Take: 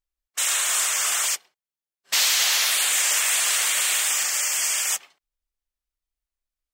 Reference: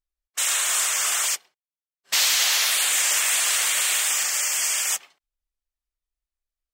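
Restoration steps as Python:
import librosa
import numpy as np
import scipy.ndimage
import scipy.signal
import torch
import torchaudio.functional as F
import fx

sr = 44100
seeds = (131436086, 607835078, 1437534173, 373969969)

y = fx.fix_declip(x, sr, threshold_db=-12.5)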